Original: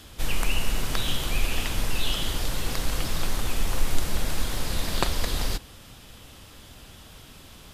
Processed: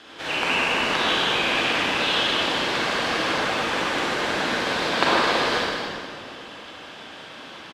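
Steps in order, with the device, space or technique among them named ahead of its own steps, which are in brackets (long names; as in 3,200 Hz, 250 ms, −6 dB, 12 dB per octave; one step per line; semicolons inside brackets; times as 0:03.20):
station announcement (band-pass filter 340–3,500 Hz; parametric band 1,600 Hz +5 dB 0.22 octaves; loudspeakers that aren't time-aligned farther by 52 metres −10 dB, 81 metres −12 dB; convolution reverb RT60 2.3 s, pre-delay 35 ms, DRR −6 dB)
level +4.5 dB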